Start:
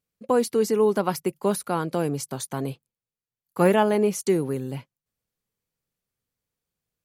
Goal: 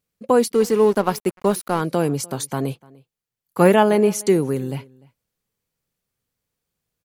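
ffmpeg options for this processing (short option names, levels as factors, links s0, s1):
-filter_complex "[0:a]asplit=2[s0][s1];[s1]adelay=297.4,volume=0.0631,highshelf=f=4000:g=-6.69[s2];[s0][s2]amix=inputs=2:normalize=0,asettb=1/sr,asplit=3[s3][s4][s5];[s3]atrim=end=0.524[s6];[s4]atrim=start=0.52:end=1.81,asetpts=PTS-STARTPTS,afade=t=in:d=0.004:c=qsin,afade=t=out:st=1.286:d=0.004:c=qsin,aeval=exprs='sgn(val(0))*max(abs(val(0))-0.0106,0)':c=same[s7];[s5]atrim=start=1.806[s8];[s6][s7]acrossfade=d=0.004:c1=hsin:c2=qsin[s9];[s9][s8]acrossfade=d=0.004:c1=qsin:c2=hsin,volume=1.78"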